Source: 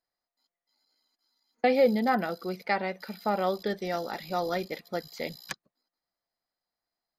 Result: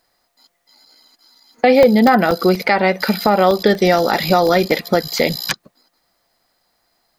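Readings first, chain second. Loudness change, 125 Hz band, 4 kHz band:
+14.5 dB, +17.5 dB, +18.0 dB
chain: compression 3:1, threshold -35 dBFS, peak gain reduction 13 dB; loudness maximiser +25 dB; crackling interface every 0.24 s, samples 64, zero, from 0.87 s; trim -1 dB

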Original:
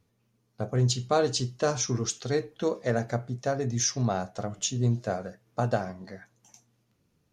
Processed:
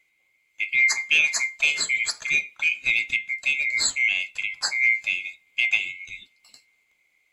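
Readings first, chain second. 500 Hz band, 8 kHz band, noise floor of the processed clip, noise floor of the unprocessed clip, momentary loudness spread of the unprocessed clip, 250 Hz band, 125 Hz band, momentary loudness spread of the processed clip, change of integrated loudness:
under -20 dB, +2.0 dB, -68 dBFS, -72 dBFS, 11 LU, under -20 dB, under -25 dB, 10 LU, +7.0 dB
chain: split-band scrambler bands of 2 kHz; trim +4 dB

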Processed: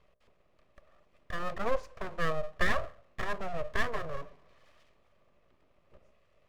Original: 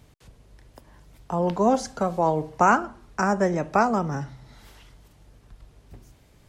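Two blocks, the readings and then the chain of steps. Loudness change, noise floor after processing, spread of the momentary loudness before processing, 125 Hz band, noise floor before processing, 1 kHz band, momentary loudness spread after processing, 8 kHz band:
-11.5 dB, -68 dBFS, 11 LU, -12.5 dB, -57 dBFS, -14.5 dB, 12 LU, -14.5 dB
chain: vowel filter u; hum notches 60/120/180/240/300 Hz; full-wave rectifier; trim +6 dB

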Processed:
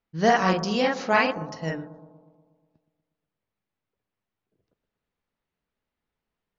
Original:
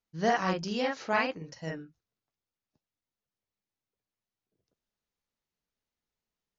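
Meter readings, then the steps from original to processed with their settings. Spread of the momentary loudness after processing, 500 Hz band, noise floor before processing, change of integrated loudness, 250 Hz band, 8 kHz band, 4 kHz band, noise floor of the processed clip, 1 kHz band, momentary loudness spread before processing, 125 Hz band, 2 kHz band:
12 LU, +7.0 dB, under -85 dBFS, +7.0 dB, +7.0 dB, no reading, +7.0 dB, under -85 dBFS, +7.5 dB, 12 LU, +7.5 dB, +7.0 dB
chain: level-controlled noise filter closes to 2.7 kHz, open at -29.5 dBFS; on a send: bucket-brigade echo 120 ms, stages 1024, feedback 62%, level -13.5 dB; on the sum: trim +7 dB

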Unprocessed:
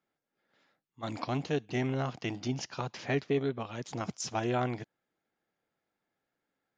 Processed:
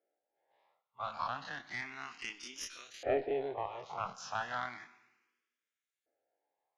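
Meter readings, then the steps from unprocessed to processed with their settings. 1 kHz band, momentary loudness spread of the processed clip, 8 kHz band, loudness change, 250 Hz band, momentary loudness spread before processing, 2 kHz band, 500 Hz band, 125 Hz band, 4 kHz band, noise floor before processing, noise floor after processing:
-1.0 dB, 9 LU, -5.5 dB, -5.0 dB, -15.5 dB, 8 LU, -1.0 dB, -4.0 dB, -20.0 dB, -4.0 dB, under -85 dBFS, under -85 dBFS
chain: every event in the spectrogram widened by 60 ms; Schroeder reverb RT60 1.3 s, combs from 33 ms, DRR 13 dB; LFO band-pass saw up 0.33 Hz 590–6200 Hz; Chebyshev shaper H 2 -13 dB, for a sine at -23 dBFS; barber-pole phaser +0.33 Hz; trim +5 dB

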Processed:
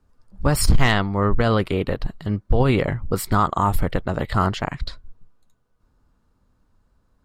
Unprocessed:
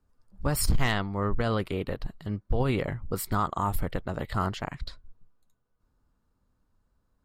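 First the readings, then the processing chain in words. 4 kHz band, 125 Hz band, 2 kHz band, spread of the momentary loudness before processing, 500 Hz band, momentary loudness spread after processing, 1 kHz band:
+8.0 dB, +8.5 dB, +8.5 dB, 10 LU, +8.5 dB, 9 LU, +8.5 dB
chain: treble shelf 12 kHz -10.5 dB; trim +8.5 dB

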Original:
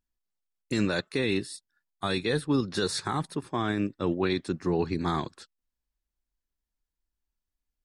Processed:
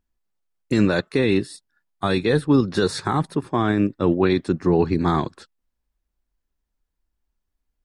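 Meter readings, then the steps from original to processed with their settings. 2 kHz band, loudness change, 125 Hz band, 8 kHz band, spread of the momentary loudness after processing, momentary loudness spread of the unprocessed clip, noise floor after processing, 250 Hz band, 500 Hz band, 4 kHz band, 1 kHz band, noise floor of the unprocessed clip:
+5.5 dB, +8.0 dB, +9.0 dB, +0.5 dB, 6 LU, 6 LU, -79 dBFS, +9.0 dB, +8.5 dB, +2.0 dB, +7.5 dB, under -85 dBFS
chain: treble shelf 2.2 kHz -9 dB; trim +9 dB

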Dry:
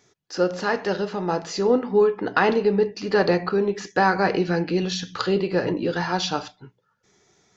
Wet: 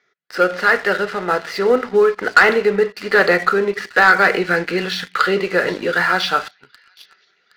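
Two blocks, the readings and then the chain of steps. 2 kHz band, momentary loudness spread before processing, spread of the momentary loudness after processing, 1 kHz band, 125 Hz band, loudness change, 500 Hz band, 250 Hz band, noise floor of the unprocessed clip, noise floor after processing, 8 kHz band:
+13.0 dB, 7 LU, 9 LU, +6.5 dB, -3.0 dB, +6.5 dB, +4.0 dB, -0.5 dB, -70 dBFS, -63 dBFS, no reading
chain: cabinet simulation 280–4600 Hz, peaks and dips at 300 Hz -9 dB, 890 Hz -7 dB, 1.4 kHz +10 dB, 2 kHz +10 dB; feedback echo behind a high-pass 769 ms, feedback 51%, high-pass 3.2 kHz, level -13 dB; waveshaping leveller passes 2; trim -1 dB

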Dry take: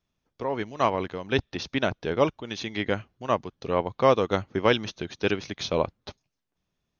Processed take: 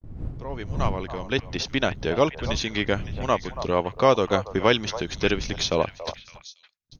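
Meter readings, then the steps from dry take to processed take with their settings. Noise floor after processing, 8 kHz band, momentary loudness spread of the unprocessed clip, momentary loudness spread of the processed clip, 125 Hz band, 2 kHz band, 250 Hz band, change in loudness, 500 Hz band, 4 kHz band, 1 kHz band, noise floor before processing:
-59 dBFS, no reading, 9 LU, 14 LU, +4.0 dB, +3.0 dB, +2.0 dB, +2.0 dB, +1.5 dB, +5.0 dB, +1.0 dB, -81 dBFS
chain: fade-in on the opening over 2.01 s; wind noise 110 Hz -38 dBFS; gate -48 dBFS, range -45 dB; treble shelf 5.1 kHz +9.5 dB; in parallel at -1 dB: compression, threshold -32 dBFS, peak gain reduction 17.5 dB; on the sum: repeats whose band climbs or falls 281 ms, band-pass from 780 Hz, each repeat 1.4 oct, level -8.5 dB

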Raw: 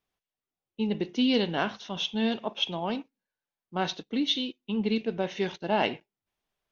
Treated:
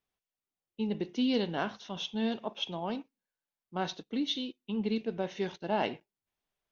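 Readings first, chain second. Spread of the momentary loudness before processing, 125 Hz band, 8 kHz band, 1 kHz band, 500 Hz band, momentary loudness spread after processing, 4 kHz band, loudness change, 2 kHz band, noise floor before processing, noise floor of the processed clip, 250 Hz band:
7 LU, -4.0 dB, no reading, -4.5 dB, -4.0 dB, 8 LU, -7.0 dB, -4.5 dB, -6.5 dB, under -85 dBFS, under -85 dBFS, -4.0 dB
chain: dynamic bell 2.6 kHz, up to -4 dB, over -44 dBFS, Q 1.2; trim -4 dB

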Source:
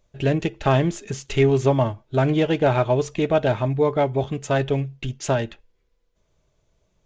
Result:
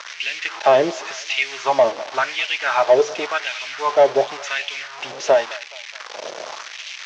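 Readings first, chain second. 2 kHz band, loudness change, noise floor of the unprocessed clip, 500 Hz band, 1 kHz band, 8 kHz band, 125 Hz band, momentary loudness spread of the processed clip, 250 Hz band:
+8.5 dB, +2.0 dB, -69 dBFS, +3.0 dB, +5.5 dB, +5.0 dB, under -20 dB, 16 LU, -10.5 dB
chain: one-bit delta coder 64 kbps, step -28 dBFS; crackle 580 per s -30 dBFS; LFO high-pass sine 0.91 Hz 490–2500 Hz; in parallel at -3.5 dB: hard clipper -17 dBFS, distortion -7 dB; on the sum: Chebyshev band-pass 120–6000 Hz, order 4; on a send: band-passed feedback delay 211 ms, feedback 67%, band-pass 1.2 kHz, level -20 dB

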